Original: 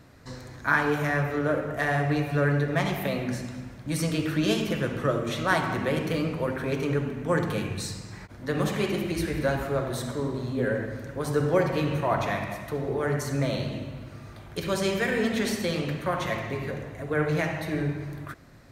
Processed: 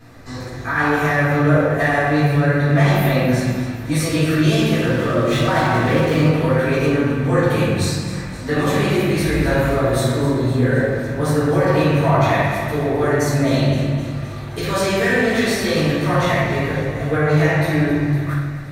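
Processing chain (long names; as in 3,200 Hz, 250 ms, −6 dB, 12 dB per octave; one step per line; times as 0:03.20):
brickwall limiter −19 dBFS, peak gain reduction 11 dB
on a send: feedback echo with a high-pass in the loop 259 ms, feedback 67%, high-pass 420 Hz, level −13.5 dB
on the sum: rectangular room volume 250 cubic metres, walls mixed, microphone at 3.8 metres
0:04.86–0:06.31: windowed peak hold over 3 samples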